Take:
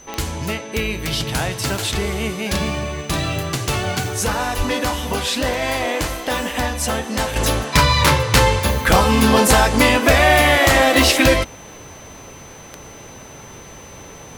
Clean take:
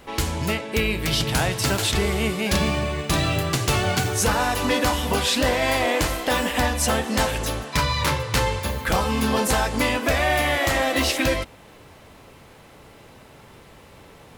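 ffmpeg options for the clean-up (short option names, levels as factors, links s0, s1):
-filter_complex "[0:a]adeclick=t=4,bandreject=f=6100:w=30,asplit=3[s0][s1][s2];[s0]afade=t=out:st=4.57:d=0.02[s3];[s1]highpass=f=140:w=0.5412,highpass=f=140:w=1.3066,afade=t=in:st=4.57:d=0.02,afade=t=out:st=4.69:d=0.02[s4];[s2]afade=t=in:st=4.69:d=0.02[s5];[s3][s4][s5]amix=inputs=3:normalize=0,asetnsamples=n=441:p=0,asendcmd='7.36 volume volume -8dB',volume=1"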